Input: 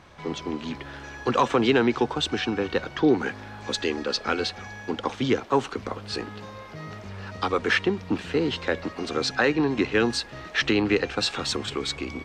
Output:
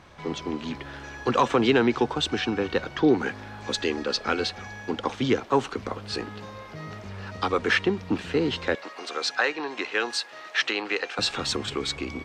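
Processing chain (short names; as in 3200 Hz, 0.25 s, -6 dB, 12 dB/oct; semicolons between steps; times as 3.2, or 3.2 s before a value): 8.75–11.19 HPF 620 Hz 12 dB/oct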